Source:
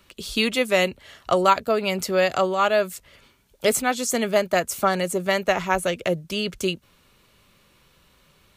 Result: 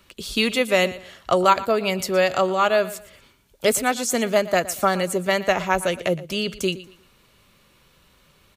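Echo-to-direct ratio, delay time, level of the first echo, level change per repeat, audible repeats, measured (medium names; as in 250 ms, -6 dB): -16.5 dB, 117 ms, -17.0 dB, -10.5 dB, 2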